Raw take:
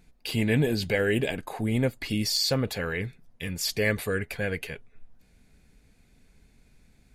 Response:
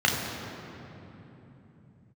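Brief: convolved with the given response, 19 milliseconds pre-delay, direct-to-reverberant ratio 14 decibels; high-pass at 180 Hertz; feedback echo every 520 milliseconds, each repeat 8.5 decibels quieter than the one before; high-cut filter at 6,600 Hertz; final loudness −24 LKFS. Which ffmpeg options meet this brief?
-filter_complex "[0:a]highpass=180,lowpass=6600,aecho=1:1:520|1040|1560|2080:0.376|0.143|0.0543|0.0206,asplit=2[link_01][link_02];[1:a]atrim=start_sample=2205,adelay=19[link_03];[link_02][link_03]afir=irnorm=-1:irlink=0,volume=-30dB[link_04];[link_01][link_04]amix=inputs=2:normalize=0,volume=4.5dB"

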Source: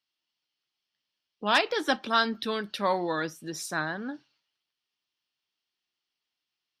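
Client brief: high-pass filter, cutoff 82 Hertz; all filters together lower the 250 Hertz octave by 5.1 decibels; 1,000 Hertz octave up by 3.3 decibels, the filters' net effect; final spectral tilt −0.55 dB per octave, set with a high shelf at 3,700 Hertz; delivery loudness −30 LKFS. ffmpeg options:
ffmpeg -i in.wav -af "highpass=82,equalizer=frequency=250:width_type=o:gain=-7,equalizer=frequency=1000:width_type=o:gain=5,highshelf=frequency=3700:gain=-5.5,volume=-2.5dB" out.wav

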